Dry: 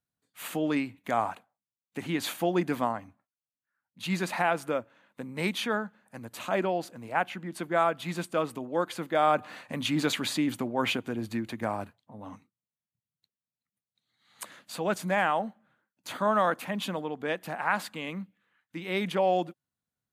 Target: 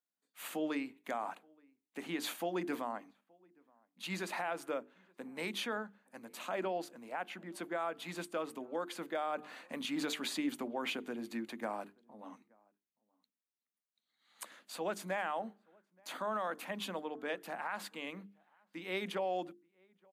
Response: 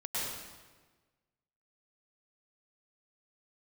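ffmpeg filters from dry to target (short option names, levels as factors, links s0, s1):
-filter_complex "[0:a]highpass=f=210:w=0.5412,highpass=f=210:w=1.3066,bandreject=f=50:t=h:w=6,bandreject=f=100:t=h:w=6,bandreject=f=150:t=h:w=6,bandreject=f=200:t=h:w=6,bandreject=f=250:t=h:w=6,bandreject=f=300:t=h:w=6,bandreject=f=350:t=h:w=6,bandreject=f=400:t=h:w=6,bandreject=f=450:t=h:w=6,alimiter=limit=0.0891:level=0:latency=1:release=103,asplit=2[s0][s1];[s1]adelay=874.6,volume=0.0355,highshelf=f=4000:g=-19.7[s2];[s0][s2]amix=inputs=2:normalize=0,volume=0.501"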